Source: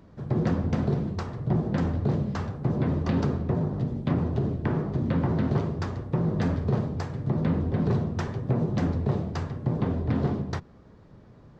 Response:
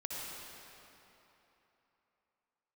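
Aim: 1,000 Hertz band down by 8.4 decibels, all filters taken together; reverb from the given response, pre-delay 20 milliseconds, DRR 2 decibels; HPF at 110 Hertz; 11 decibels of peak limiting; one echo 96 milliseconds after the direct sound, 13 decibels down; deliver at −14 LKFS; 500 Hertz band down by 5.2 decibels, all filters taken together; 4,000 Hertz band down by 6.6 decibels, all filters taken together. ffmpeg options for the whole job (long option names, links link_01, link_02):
-filter_complex "[0:a]highpass=110,equalizer=frequency=500:width_type=o:gain=-5,equalizer=frequency=1000:width_type=o:gain=-9,equalizer=frequency=4000:width_type=o:gain=-8,alimiter=level_in=2.5dB:limit=-24dB:level=0:latency=1,volume=-2.5dB,aecho=1:1:96:0.224,asplit=2[link_01][link_02];[1:a]atrim=start_sample=2205,adelay=20[link_03];[link_02][link_03]afir=irnorm=-1:irlink=0,volume=-4dB[link_04];[link_01][link_04]amix=inputs=2:normalize=0,volume=19dB"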